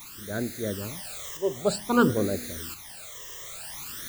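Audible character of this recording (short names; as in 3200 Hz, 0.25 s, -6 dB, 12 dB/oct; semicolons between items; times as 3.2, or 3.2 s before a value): a quantiser's noise floor 8-bit, dither triangular; phasing stages 12, 0.53 Hz, lowest notch 240–1000 Hz; tremolo saw up 0.73 Hz, depth 55%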